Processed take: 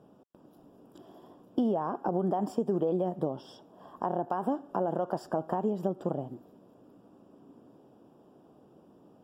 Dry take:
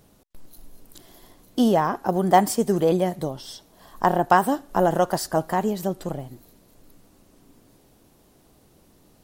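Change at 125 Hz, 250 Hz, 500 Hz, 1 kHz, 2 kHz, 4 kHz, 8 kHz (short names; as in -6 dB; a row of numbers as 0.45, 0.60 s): -8.5 dB, -7.5 dB, -8.0 dB, -12.0 dB, -20.0 dB, -19.0 dB, under -25 dB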